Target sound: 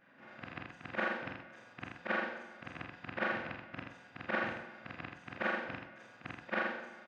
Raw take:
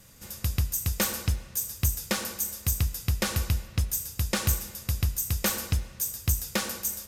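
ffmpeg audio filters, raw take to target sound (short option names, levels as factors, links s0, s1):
-af "afftfilt=real='re':imag='-im':win_size=4096:overlap=0.75,highpass=f=190:w=0.5412,highpass=f=190:w=1.3066,equalizer=f=190:t=q:w=4:g=-7,equalizer=f=430:t=q:w=4:g=-8,equalizer=f=700:t=q:w=4:g=5,equalizer=f=1600:t=q:w=4:g=6,lowpass=f=2400:w=0.5412,lowpass=f=2400:w=1.3066,aecho=1:1:81:0.562,volume=1.12"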